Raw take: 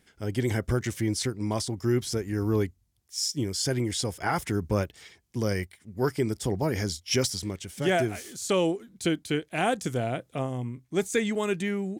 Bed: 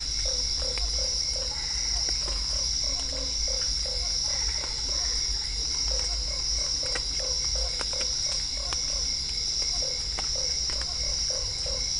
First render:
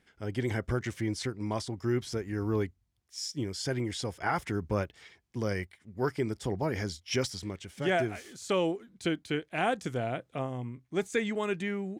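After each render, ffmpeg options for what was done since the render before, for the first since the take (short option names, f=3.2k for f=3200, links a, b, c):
-af "lowpass=f=1.3k:p=1,tiltshelf=f=970:g=-5"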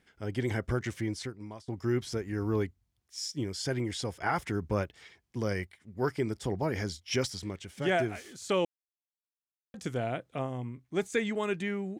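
-filter_complex "[0:a]asplit=4[a][b][c][d];[a]atrim=end=1.68,asetpts=PTS-STARTPTS,afade=t=out:st=0.96:d=0.72:silence=0.0668344[e];[b]atrim=start=1.68:end=8.65,asetpts=PTS-STARTPTS,afade=t=in:d=0.004:c=hsin:silence=0.0668344,afade=t=out:st=6.966:d=0.004:c=hsin[f];[c]atrim=start=8.65:end=9.74,asetpts=PTS-STARTPTS,volume=0[g];[d]atrim=start=9.74,asetpts=PTS-STARTPTS,afade=t=in:d=0.004:c=hsin[h];[e][f][g][h]concat=n=4:v=0:a=1"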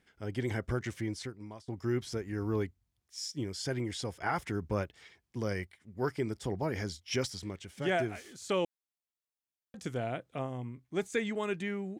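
-af "volume=-2.5dB"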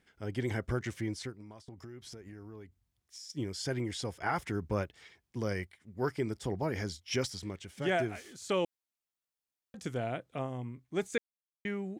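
-filter_complex "[0:a]asettb=1/sr,asplit=3[a][b][c];[a]atrim=end=1.324[d];[b]atrim=start=1.32:end=3.3,asetpts=PTS-STARTPTS,afade=t=in:d=0.004:c=qsin,afade=t=out:st=1.976:d=0.004:c=qsin,acompressor=threshold=-44dB:ratio=10:attack=3.2:release=140:knee=1:detection=peak[e];[c]atrim=start=3.296[f];[d][e]acrossfade=d=0.004:c1=hsin:c2=qsin[g];[g][f]acrossfade=d=0.004:c1=qsin:c2=hsin,asplit=3[h][i][j];[h]atrim=end=11.18,asetpts=PTS-STARTPTS,afade=t=out:st=11.176:d=0.004:c=hsin[k];[i]atrim=start=11.18:end=11.65,asetpts=PTS-STARTPTS,volume=0[l];[j]atrim=start=11.65,asetpts=PTS-STARTPTS,afade=t=in:d=0.004:c=hsin[m];[k][l][m]concat=n=3:v=0:a=1"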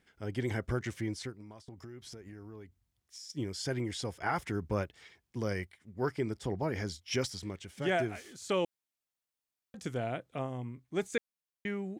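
-filter_complex "[0:a]asettb=1/sr,asplit=3[a][b][c];[a]atrim=end=5.914[d];[b]atrim=start=5.91:end=6.87,asetpts=PTS-STARTPTS,afade=t=in:d=0.004:c=qsin,afade=t=out:st=0.956:d=0.004:c=qsin,highshelf=f=6.6k:g=-4.5[e];[c]atrim=start=6.866[f];[d][e]acrossfade=d=0.004:c1=hsin:c2=qsin[g];[g][f]acrossfade=d=0.004:c1=qsin:c2=hsin"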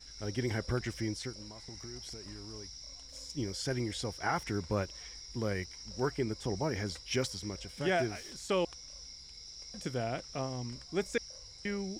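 -filter_complex "[1:a]volume=-20.5dB[a];[0:a][a]amix=inputs=2:normalize=0"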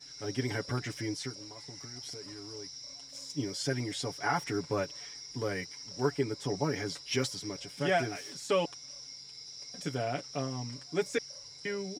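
-af "highpass=130,aecho=1:1:7:0.83"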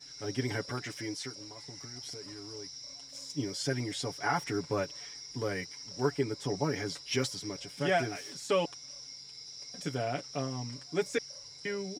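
-filter_complex "[0:a]asettb=1/sr,asplit=3[a][b][c];[a]atrim=end=0.664[d];[b]atrim=start=0.66:end=1.37,asetpts=PTS-STARTPTS,afade=t=in:d=0.004:c=qsin,afade=t=out:st=0.706:d=0.004:c=qsin,lowshelf=f=220:g=-8[e];[c]atrim=start=1.366[f];[d][e]acrossfade=d=0.004:c1=hsin:c2=qsin[g];[g][f]acrossfade=d=0.004:c1=qsin:c2=hsin"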